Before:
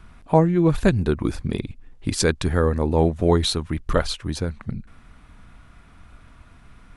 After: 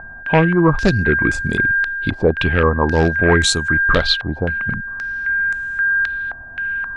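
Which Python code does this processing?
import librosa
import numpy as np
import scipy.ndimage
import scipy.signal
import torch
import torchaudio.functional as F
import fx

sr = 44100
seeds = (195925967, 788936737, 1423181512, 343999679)

y = x + 10.0 ** (-26.0 / 20.0) * np.sin(2.0 * np.pi * 1600.0 * np.arange(len(x)) / sr)
y = np.clip(10.0 ** (11.0 / 20.0) * y, -1.0, 1.0) / 10.0 ** (11.0 / 20.0)
y = fx.filter_held_lowpass(y, sr, hz=3.8, low_hz=760.0, high_hz=7400.0)
y = y * librosa.db_to_amplitude(3.5)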